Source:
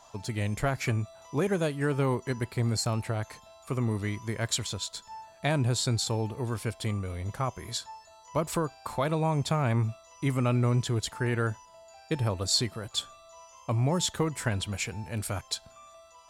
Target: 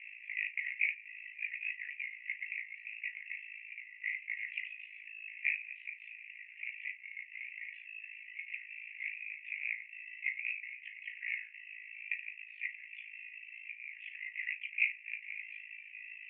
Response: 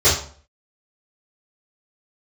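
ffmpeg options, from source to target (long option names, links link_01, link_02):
-filter_complex "[0:a]aeval=exprs='val(0)+0.5*0.0158*sgn(val(0))':channel_layout=same,tremolo=f=54:d=1,asuperpass=centerf=2300:order=12:qfactor=2.8,asplit=2[link_01][link_02];[1:a]atrim=start_sample=2205,atrim=end_sample=3087,asetrate=52920,aresample=44100[link_03];[link_02][link_03]afir=irnorm=-1:irlink=0,volume=-23.5dB[link_04];[link_01][link_04]amix=inputs=2:normalize=0,volume=8.5dB"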